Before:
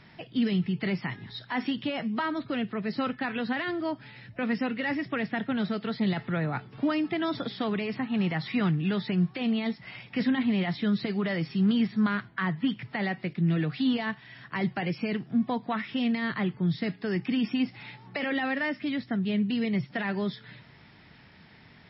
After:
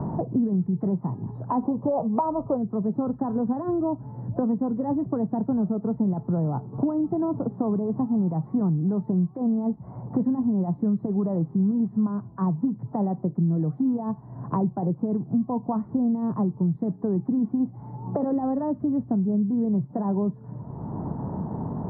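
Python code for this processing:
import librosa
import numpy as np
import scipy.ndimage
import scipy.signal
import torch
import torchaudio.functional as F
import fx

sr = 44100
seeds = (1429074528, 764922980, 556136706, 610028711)

y = fx.band_shelf(x, sr, hz=730.0, db=12.0, octaves=1.7, at=(1.62, 2.56), fade=0.02)
y = scipy.signal.sosfilt(scipy.signal.ellip(4, 1.0, 60, 1000.0, 'lowpass', fs=sr, output='sos'), y)
y = fx.low_shelf(y, sr, hz=200.0, db=9.0)
y = fx.band_squash(y, sr, depth_pct=100)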